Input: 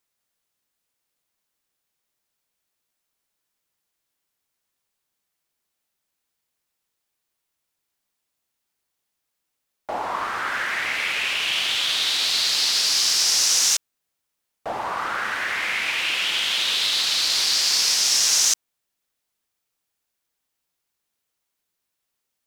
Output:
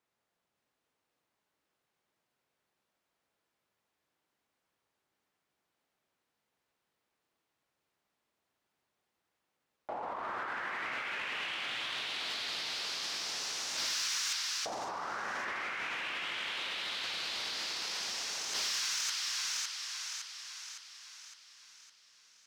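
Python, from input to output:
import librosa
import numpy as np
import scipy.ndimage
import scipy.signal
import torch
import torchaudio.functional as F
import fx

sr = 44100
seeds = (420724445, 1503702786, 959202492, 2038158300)

y = fx.lowpass(x, sr, hz=1400.0, slope=6)
y = fx.echo_split(y, sr, split_hz=1100.0, low_ms=84, high_ms=560, feedback_pct=52, wet_db=-4.0)
y = fx.over_compress(y, sr, threshold_db=-35.0, ratio=-1.0)
y = fx.highpass(y, sr, hz=130.0, slope=6)
y = 10.0 ** (-25.0 / 20.0) * np.tanh(y / 10.0 ** (-25.0 / 20.0))
y = y * 10.0 ** (-1.5 / 20.0)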